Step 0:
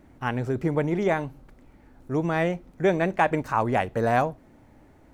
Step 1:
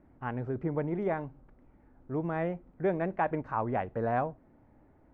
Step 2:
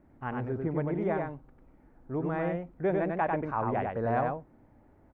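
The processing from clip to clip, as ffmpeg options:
ffmpeg -i in.wav -af "lowpass=1600,volume=-7dB" out.wav
ffmpeg -i in.wav -af "aecho=1:1:96:0.668" out.wav

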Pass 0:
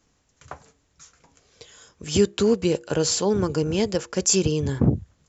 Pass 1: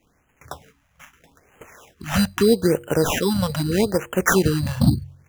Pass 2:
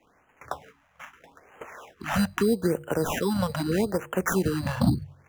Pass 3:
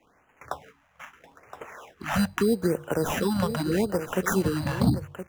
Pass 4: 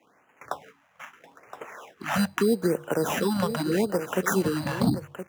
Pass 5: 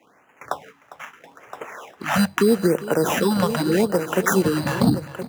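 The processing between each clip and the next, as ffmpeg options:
ffmpeg -i in.wav -af "acrusher=samples=10:mix=1:aa=0.000001,bandreject=frequency=45.58:width_type=h:width=4,bandreject=frequency=91.16:width_type=h:width=4,bandreject=frequency=136.74:width_type=h:width=4,afftfilt=real='re*(1-between(b*sr/1024,330*pow(4600/330,0.5+0.5*sin(2*PI*0.79*pts/sr))/1.41,330*pow(4600/330,0.5+0.5*sin(2*PI*0.79*pts/sr))*1.41))':imag='im*(1-between(b*sr/1024,330*pow(4600/330,0.5+0.5*sin(2*PI*0.79*pts/sr))/1.41,330*pow(4600/330,0.5+0.5*sin(2*PI*0.79*pts/sr))*1.41))':win_size=1024:overlap=0.75,volume=3.5dB" out.wav
ffmpeg -i in.wav -filter_complex "[0:a]equalizer=frequency=940:width=0.31:gain=13.5,bandreject=frequency=50:width_type=h:width=6,bandreject=frequency=100:width_type=h:width=6,bandreject=frequency=150:width_type=h:width=6,acrossover=split=250|6600[link_01][link_02][link_03];[link_02]acompressor=threshold=-19dB:ratio=6[link_04];[link_01][link_04][link_03]amix=inputs=3:normalize=0,volume=-8dB" out.wav
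ffmpeg -i in.wav -af "aecho=1:1:1019:0.282" out.wav
ffmpeg -i in.wav -af "highpass=160,volume=1dB" out.wav
ffmpeg -i in.wav -af "aecho=1:1:403:0.15,volume=5.5dB" out.wav

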